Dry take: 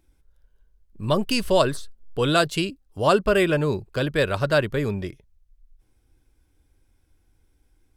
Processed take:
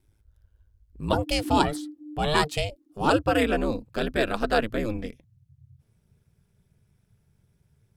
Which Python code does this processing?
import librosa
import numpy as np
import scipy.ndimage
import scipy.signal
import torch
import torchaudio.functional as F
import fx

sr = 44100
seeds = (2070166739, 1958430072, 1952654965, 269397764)

y = fx.ring_mod(x, sr, carrier_hz=fx.steps((0.0, 53.0), (1.13, 300.0), (3.1, 110.0)))